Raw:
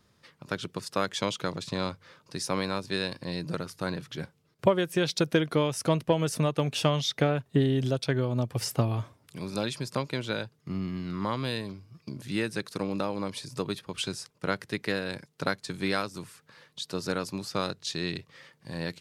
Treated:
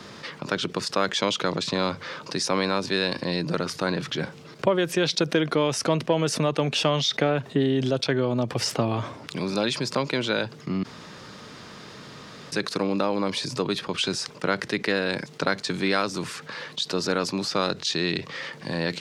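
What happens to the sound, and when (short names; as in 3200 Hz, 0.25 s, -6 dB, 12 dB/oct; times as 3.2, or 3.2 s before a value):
8.67–9.39 median filter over 3 samples
10.83–12.52 room tone
whole clip: three-band isolator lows -15 dB, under 160 Hz, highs -17 dB, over 7100 Hz; fast leveller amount 50%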